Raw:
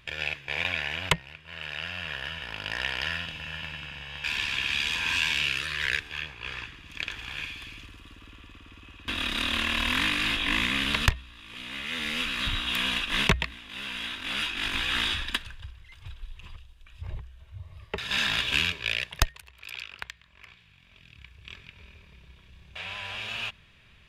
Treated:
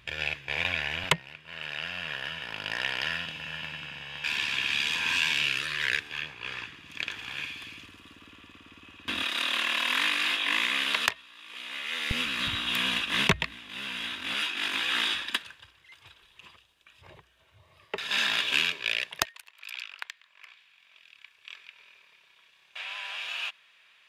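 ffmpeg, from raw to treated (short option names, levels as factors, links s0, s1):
-af "asetnsamples=n=441:p=0,asendcmd='1.04 highpass f 140;9.23 highpass f 470;12.11 highpass f 110;14.34 highpass f 280;19.25 highpass f 820',highpass=40"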